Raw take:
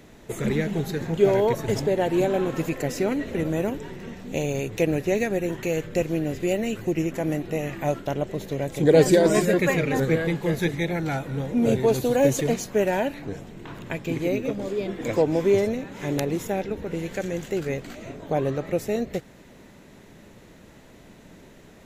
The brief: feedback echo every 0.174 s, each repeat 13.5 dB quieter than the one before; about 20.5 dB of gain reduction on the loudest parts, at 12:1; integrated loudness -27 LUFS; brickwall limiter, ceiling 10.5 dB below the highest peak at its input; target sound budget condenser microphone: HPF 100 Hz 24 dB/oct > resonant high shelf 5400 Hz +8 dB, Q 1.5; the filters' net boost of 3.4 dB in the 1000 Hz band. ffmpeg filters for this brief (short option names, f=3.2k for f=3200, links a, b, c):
-af "equalizer=f=1k:t=o:g=5,acompressor=threshold=-32dB:ratio=12,alimiter=level_in=6dB:limit=-24dB:level=0:latency=1,volume=-6dB,highpass=f=100:w=0.5412,highpass=f=100:w=1.3066,highshelf=f=5.4k:t=q:w=1.5:g=8,aecho=1:1:174|348:0.211|0.0444,volume=12dB"